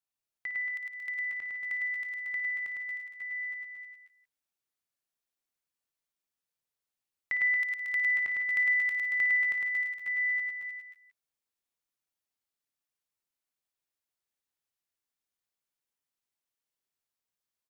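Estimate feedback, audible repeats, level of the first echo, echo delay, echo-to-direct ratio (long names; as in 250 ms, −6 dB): repeats not evenly spaced, 12, −11.0 dB, 56 ms, 1.5 dB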